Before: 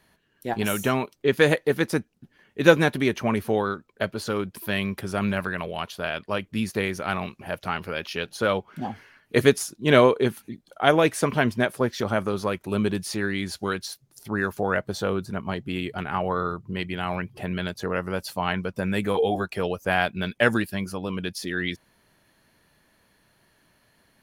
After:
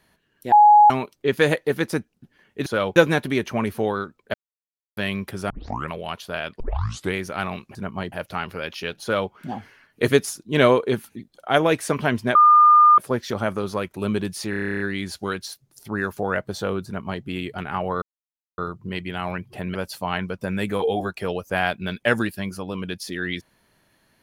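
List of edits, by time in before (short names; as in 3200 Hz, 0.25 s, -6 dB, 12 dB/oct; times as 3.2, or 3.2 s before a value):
0.52–0.9 bleep 836 Hz -8 dBFS
4.04–4.67 mute
5.2 tape start 0.41 s
6.3 tape start 0.54 s
8.35–8.65 copy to 2.66
11.68 add tone 1210 Hz -9 dBFS 0.63 s
13.2 stutter 0.03 s, 11 plays
15.26–15.63 copy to 7.45
16.42 insert silence 0.56 s
17.59–18.1 cut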